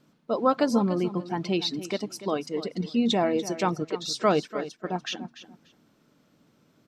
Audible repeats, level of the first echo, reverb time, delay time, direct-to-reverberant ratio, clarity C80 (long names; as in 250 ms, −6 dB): 2, −14.0 dB, no reverb audible, 291 ms, no reverb audible, no reverb audible